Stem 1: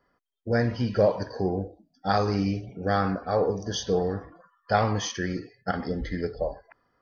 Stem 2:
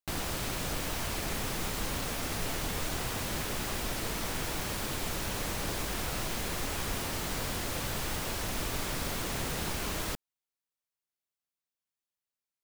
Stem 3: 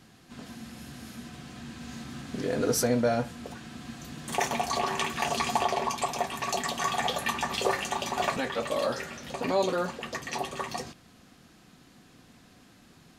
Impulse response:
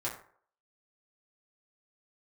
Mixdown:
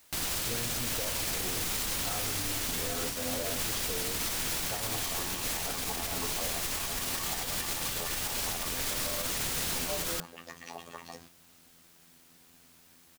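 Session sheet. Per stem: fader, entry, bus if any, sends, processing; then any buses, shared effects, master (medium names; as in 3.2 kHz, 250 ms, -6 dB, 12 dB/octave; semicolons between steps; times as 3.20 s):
-9.0 dB, 0.00 s, no send, compression, threshold -25 dBFS, peak gain reduction 9.5 dB; comb of notches 200 Hz
-0.5 dB, 0.05 s, no send, treble shelf 2.1 kHz +11.5 dB; peak limiter -21.5 dBFS, peak gain reduction 6.5 dB
-8.5 dB, 0.35 s, no send, robot voice 84.7 Hz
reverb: none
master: word length cut 10-bit, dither triangular; peak limiter -22.5 dBFS, peak gain reduction 8.5 dB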